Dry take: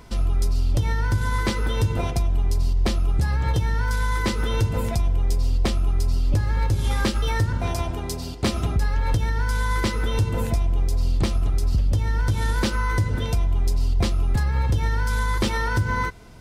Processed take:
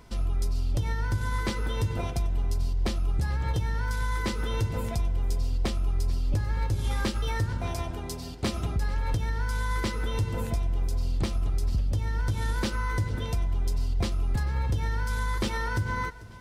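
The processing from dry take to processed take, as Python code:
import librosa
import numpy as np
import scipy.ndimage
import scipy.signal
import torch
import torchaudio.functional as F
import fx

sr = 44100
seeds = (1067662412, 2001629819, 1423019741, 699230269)

y = fx.echo_feedback(x, sr, ms=443, feedback_pct=40, wet_db=-19.0)
y = y * librosa.db_to_amplitude(-6.0)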